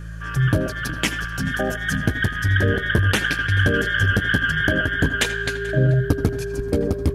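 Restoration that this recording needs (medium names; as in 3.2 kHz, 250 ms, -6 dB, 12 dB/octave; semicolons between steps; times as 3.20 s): de-hum 54.8 Hz, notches 3; band-stop 400 Hz, Q 30; inverse comb 435 ms -21.5 dB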